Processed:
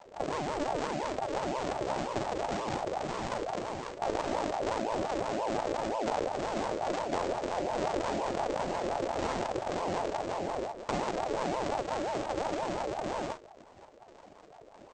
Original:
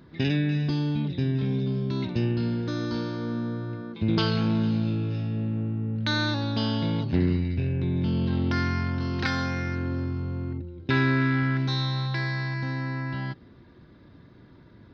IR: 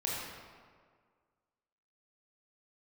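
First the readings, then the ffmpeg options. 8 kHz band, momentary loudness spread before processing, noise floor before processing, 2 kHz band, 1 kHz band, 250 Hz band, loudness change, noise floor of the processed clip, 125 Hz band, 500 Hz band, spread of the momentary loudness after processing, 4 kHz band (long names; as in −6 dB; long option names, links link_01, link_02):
can't be measured, 7 LU, −52 dBFS, −9.0 dB, +5.0 dB, −11.5 dB, −6.5 dB, −54 dBFS, −20.5 dB, +3.5 dB, 3 LU, −9.0 dB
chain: -af "acompressor=threshold=-27dB:ratio=6,aresample=16000,acrusher=samples=36:mix=1:aa=0.000001:lfo=1:lforange=57.6:lforate=1.8,aresample=44100,aecho=1:1:37|49:0.316|0.251,aeval=exprs='val(0)*sin(2*PI*610*n/s+610*0.3/5.7*sin(2*PI*5.7*n/s))':channel_layout=same"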